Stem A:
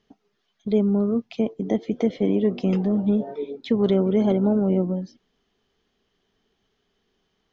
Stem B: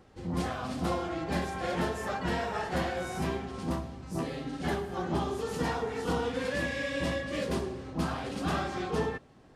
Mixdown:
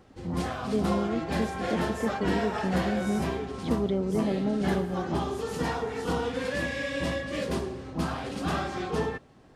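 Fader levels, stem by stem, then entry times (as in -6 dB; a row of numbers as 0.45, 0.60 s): -8.0, +1.5 dB; 0.00, 0.00 s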